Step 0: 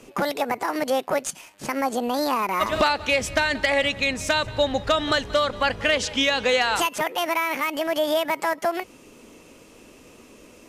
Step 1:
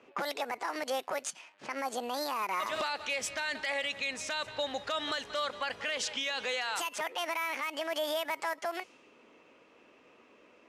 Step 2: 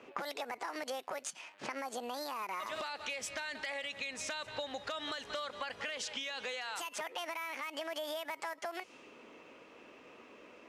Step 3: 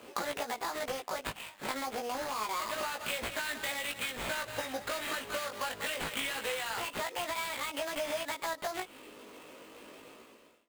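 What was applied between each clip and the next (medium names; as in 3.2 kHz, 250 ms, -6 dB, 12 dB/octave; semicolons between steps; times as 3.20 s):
level-controlled noise filter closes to 2.1 kHz, open at -19 dBFS; high-pass 840 Hz 6 dB/octave; peak limiter -19 dBFS, peak gain reduction 10 dB; trim -4.5 dB
compression 10:1, threshold -41 dBFS, peak gain reduction 12.5 dB; trim +4.5 dB
fade out at the end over 0.68 s; sample-rate reducer 5.7 kHz, jitter 20%; chorus 0.27 Hz, delay 17 ms, depth 2.2 ms; trim +7.5 dB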